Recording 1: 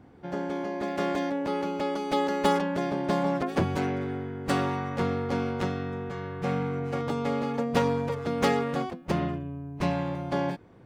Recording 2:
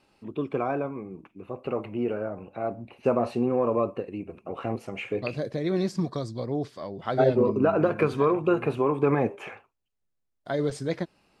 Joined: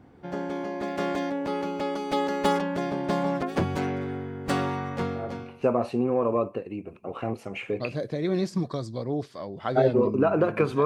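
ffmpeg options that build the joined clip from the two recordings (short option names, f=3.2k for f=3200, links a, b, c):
-filter_complex "[0:a]apad=whole_dur=10.85,atrim=end=10.85,atrim=end=5.66,asetpts=PTS-STARTPTS[a];[1:a]atrim=start=2.32:end=8.27,asetpts=PTS-STARTPTS[b];[a][b]acrossfade=d=0.76:c1=tri:c2=tri"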